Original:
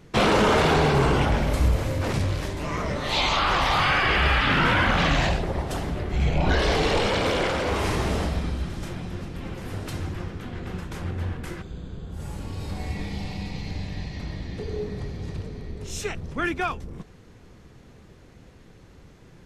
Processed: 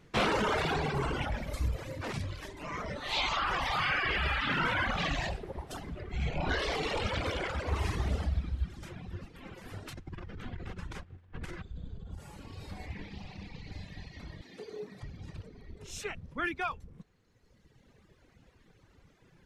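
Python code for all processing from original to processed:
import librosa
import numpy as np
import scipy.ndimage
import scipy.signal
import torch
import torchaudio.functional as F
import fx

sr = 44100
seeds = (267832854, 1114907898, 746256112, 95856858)

y = fx.chain(x, sr, fx.peak_eq(hz=67.0, db=10.5, octaves=1.3),
    fx.doppler_dist(depth_ms=0.22), at=(7.0, 9.25))
y = fx.chain(y, sr, fx.lowpass(hz=9300.0, slope=12),
    fx.low_shelf(hz=85.0, db=9.0),
    fx.over_compress(threshold_db=-29.0, ratio=-0.5), at=(9.93, 12.19))
y = fx.chain(y, sr, fx.high_shelf(hz=4500.0, db=-5.5),
    fx.doppler_dist(depth_ms=0.35), at=(12.86, 13.72))
y = fx.chain(y, sr, fx.highpass(hz=200.0, slope=12),
    fx.high_shelf(hz=7200.0, db=6.0), at=(14.41, 15.03))
y = fx.dereverb_blind(y, sr, rt60_s=1.9)
y = fx.peak_eq(y, sr, hz=2000.0, db=4.0, octaves=2.4)
y = y * 10.0 ** (-9.0 / 20.0)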